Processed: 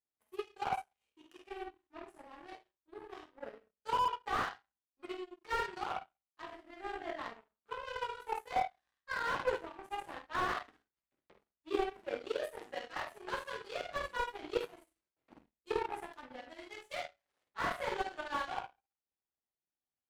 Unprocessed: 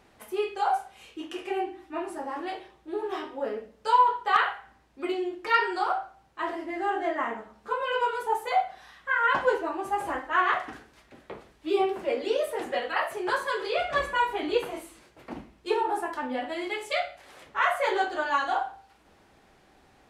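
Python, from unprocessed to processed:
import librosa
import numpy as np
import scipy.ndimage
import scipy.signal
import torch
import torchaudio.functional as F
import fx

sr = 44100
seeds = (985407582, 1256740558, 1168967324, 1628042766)

y = fx.room_early_taps(x, sr, ms=(49, 74), db=(-4.5, -11.0))
y = fx.power_curve(y, sr, exponent=2.0)
y = fx.slew_limit(y, sr, full_power_hz=39.0)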